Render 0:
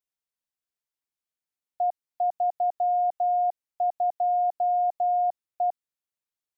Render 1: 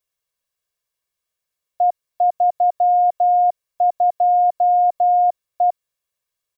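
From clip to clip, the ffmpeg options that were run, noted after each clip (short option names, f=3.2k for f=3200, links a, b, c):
-af "aecho=1:1:1.8:0.65,volume=8dB"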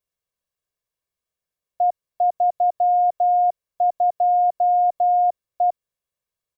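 -af "tiltshelf=f=820:g=4,volume=-3dB"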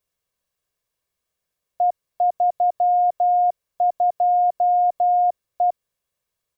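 -af "alimiter=limit=-20dB:level=0:latency=1:release=13,volume=6dB"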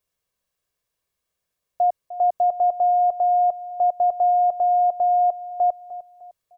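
-af "aecho=1:1:303|606|909:0.178|0.0622|0.0218"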